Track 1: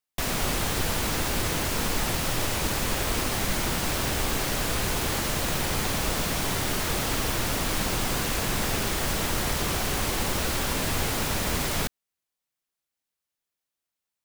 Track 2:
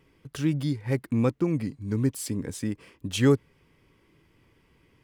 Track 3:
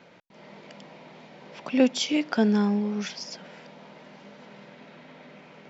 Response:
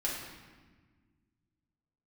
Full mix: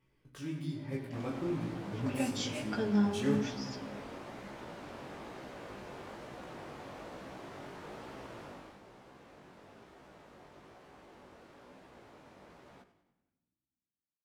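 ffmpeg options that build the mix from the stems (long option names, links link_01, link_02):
-filter_complex "[0:a]bandpass=frequency=520:width_type=q:width=0.58:csg=0,adelay=950,volume=-12dB,afade=type=out:start_time=8.39:duration=0.39:silence=0.334965,asplit=3[link_01][link_02][link_03];[link_02]volume=-18.5dB[link_04];[link_03]volume=-13dB[link_05];[1:a]flanger=delay=16:depth=3.5:speed=0.49,volume=-10.5dB,asplit=3[link_06][link_07][link_08];[link_07]volume=-3.5dB[link_09];[link_08]volume=-9dB[link_10];[2:a]aecho=1:1:5:0.91,adelay=400,volume=-11.5dB,asplit=2[link_11][link_12];[link_12]volume=-10dB[link_13];[3:a]atrim=start_sample=2205[link_14];[link_04][link_09][link_13]amix=inputs=3:normalize=0[link_15];[link_15][link_14]afir=irnorm=-1:irlink=0[link_16];[link_05][link_10]amix=inputs=2:normalize=0,aecho=0:1:95|190|285|380|475|570|665:1|0.51|0.26|0.133|0.0677|0.0345|0.0176[link_17];[link_01][link_06][link_11][link_16][link_17]amix=inputs=5:normalize=0,flanger=delay=15:depth=7:speed=1.1"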